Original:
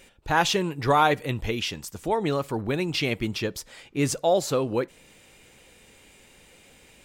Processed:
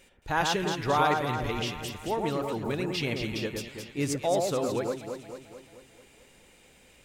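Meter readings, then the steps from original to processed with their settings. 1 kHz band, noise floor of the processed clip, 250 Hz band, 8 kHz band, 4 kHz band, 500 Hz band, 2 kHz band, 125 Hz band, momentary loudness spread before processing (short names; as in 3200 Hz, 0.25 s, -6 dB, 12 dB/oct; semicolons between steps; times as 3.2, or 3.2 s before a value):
-3.5 dB, -58 dBFS, -3.5 dB, -4.0 dB, -4.0 dB, -3.5 dB, -3.5 dB, -3.5 dB, 10 LU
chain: echo with dull and thin repeats by turns 0.11 s, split 1900 Hz, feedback 74%, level -3.5 dB; gain -5.5 dB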